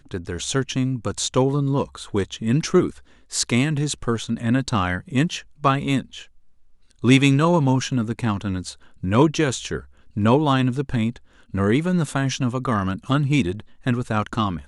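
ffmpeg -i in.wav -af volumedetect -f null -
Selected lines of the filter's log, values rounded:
mean_volume: -21.8 dB
max_volume: -1.6 dB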